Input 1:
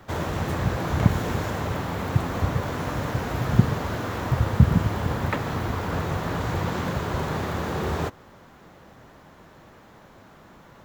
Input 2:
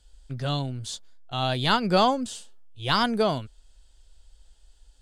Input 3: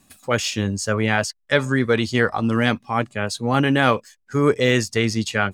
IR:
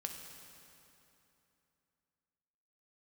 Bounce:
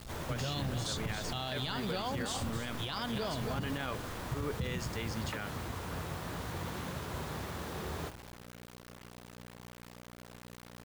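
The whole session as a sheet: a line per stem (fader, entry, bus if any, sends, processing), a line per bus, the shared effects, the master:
-13.0 dB, 0.00 s, no send, echo send -20 dB, de-hum 102.1 Hz, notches 9; hum 60 Hz, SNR 13 dB
-1.0 dB, 0.00 s, no send, echo send -9.5 dB, compressor, threshold -29 dBFS, peak gain reduction 13 dB
-19.0 dB, 0.00 s, no send, no echo send, dry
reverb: off
echo: echo 0.271 s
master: bell 3800 Hz +4.5 dB 1.6 oct; bit-crush 8-bit; limiter -26.5 dBFS, peak gain reduction 11.5 dB

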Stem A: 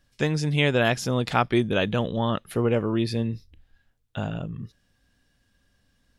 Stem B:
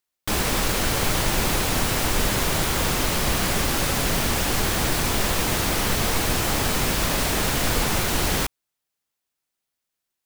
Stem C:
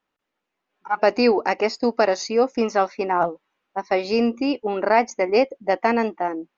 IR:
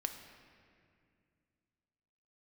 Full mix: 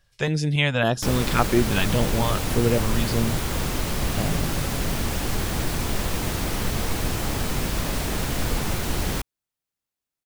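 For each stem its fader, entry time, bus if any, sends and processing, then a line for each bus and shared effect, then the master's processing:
+2.0 dB, 0.00 s, no send, stepped notch 3.6 Hz 260–3100 Hz
-6.5 dB, 0.75 s, no send, low shelf 350 Hz +7 dB
off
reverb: off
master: dry

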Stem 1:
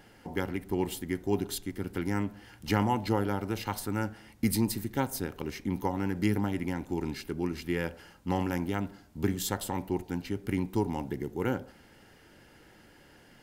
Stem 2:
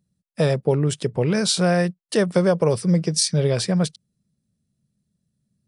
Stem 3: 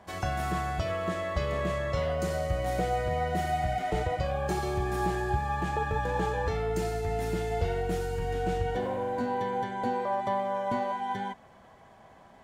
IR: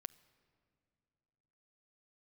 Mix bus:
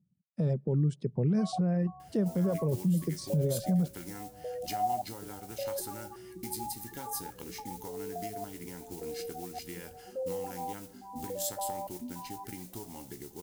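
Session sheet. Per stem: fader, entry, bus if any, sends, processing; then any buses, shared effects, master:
-3.5 dB, 2.00 s, no send, compressor 6:1, threshold -33 dBFS, peak gain reduction 12.5 dB; resonator 60 Hz, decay 0.18 s, harmonics all, mix 70%; modulation noise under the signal 17 dB
+0.5 dB, 0.00 s, send -17.5 dB, reverb removal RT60 1.2 s; band-pass 170 Hz, Q 1.3
+1.0 dB, 1.30 s, no send, spectral gate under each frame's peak -10 dB strong; vowel sequencer 3.5 Hz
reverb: on, RT60 2.5 s, pre-delay 7 ms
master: tone controls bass -1 dB, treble +12 dB; limiter -21 dBFS, peak gain reduction 10 dB

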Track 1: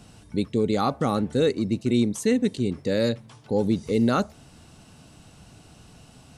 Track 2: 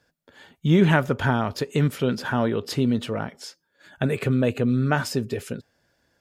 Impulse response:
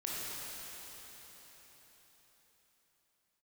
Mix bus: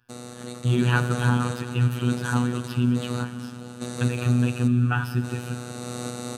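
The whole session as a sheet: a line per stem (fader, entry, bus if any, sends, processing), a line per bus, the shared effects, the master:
-6.5 dB, 0.10 s, no send, per-bin compression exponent 0.2; random-step tremolo, depth 85%; auto duck -9 dB, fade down 1.80 s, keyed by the second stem
-1.5 dB, 0.00 s, send -11 dB, resonant high shelf 3300 Hz -9 dB, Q 3; fixed phaser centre 2100 Hz, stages 6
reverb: on, RT60 4.7 s, pre-delay 18 ms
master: tone controls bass +4 dB, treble +10 dB; robotiser 122 Hz

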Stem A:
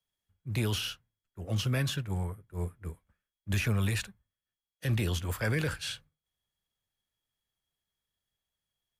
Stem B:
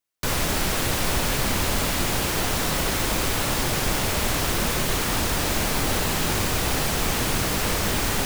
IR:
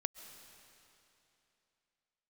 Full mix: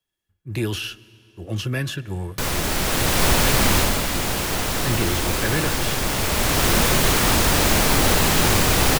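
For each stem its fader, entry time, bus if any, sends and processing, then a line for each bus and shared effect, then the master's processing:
+1.0 dB, 0.00 s, muted 2.6–4.04, send -9 dB, small resonant body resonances 340/1700/2700 Hz, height 10 dB
+2.0 dB, 2.15 s, send -3.5 dB, auto duck -13 dB, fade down 0.25 s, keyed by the first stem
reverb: on, RT60 3.0 s, pre-delay 95 ms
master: dry

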